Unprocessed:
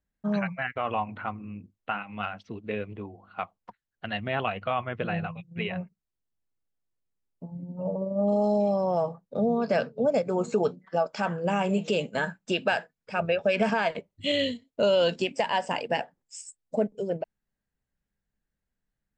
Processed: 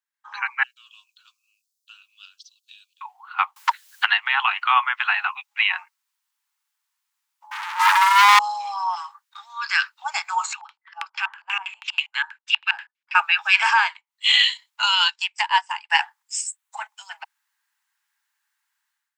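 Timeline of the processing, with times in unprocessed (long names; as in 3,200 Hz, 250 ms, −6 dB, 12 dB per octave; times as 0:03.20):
0:00.63–0:03.01: inverse Chebyshev high-pass filter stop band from 2,200 Hz
0:03.56–0:04.67: multiband upward and downward compressor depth 100%
0:07.51–0:08.39: leveller curve on the samples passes 5
0:08.95–0:10.02: high-pass filter 1,300 Hz 24 dB per octave
0:10.53–0:13.15: auto-filter band-pass square 6.2 Hz 230–2,600 Hz
0:13.69–0:14.35: duck −21.5 dB, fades 0.29 s
0:14.95–0:15.90: expander for the loud parts 2.5 to 1, over −36 dBFS
0:16.47–0:16.89: parametric band 5,000 Hz −9 dB 0.39 octaves
whole clip: Butterworth high-pass 850 Hz 96 dB per octave; automatic gain control gain up to 16 dB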